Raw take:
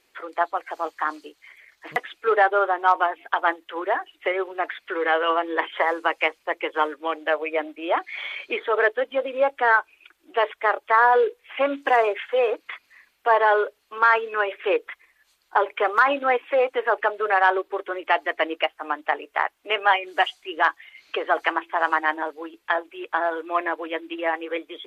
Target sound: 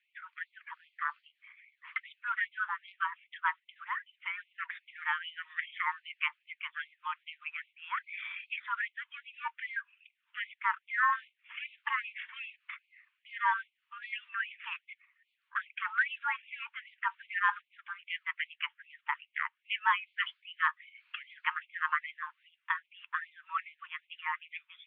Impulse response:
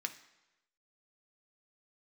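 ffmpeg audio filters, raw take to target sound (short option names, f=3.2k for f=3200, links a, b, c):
-af "highpass=f=380:t=q:w=0.5412,highpass=f=380:t=q:w=1.307,lowpass=f=3k:t=q:w=0.5176,lowpass=f=3k:t=q:w=0.7071,lowpass=f=3k:t=q:w=1.932,afreqshift=100,afftfilt=real='re*gte(b*sr/1024,860*pow(2100/860,0.5+0.5*sin(2*PI*2.5*pts/sr)))':imag='im*gte(b*sr/1024,860*pow(2100/860,0.5+0.5*sin(2*PI*2.5*pts/sr)))':win_size=1024:overlap=0.75,volume=-8dB"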